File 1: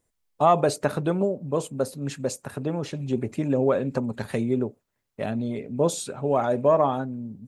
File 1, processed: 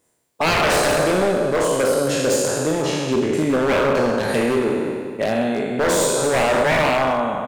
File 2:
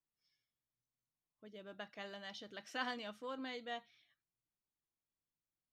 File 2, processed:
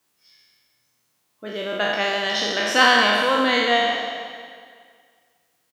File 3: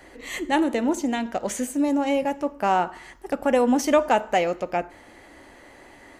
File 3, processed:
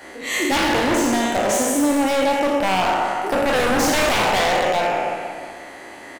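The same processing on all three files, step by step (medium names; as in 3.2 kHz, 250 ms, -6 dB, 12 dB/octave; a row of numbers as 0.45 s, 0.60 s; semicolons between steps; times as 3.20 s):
spectral sustain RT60 1.70 s; high-pass 270 Hz 6 dB/octave; in parallel at -0.5 dB: compression, threshold -26 dBFS; on the sum: wavefolder -15.5 dBFS; doubling 38 ms -11.5 dB; on a send: bucket-brigade echo 182 ms, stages 4096, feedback 51%, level -12 dB; on the sum: normalise loudness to -19 LUFS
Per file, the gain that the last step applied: +3.0 dB, +16.5 dB, +1.5 dB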